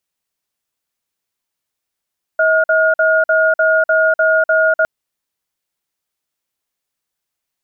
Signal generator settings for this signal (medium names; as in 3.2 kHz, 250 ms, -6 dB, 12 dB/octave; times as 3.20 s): cadence 638 Hz, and 1.43 kHz, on 0.25 s, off 0.05 s, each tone -12.5 dBFS 2.46 s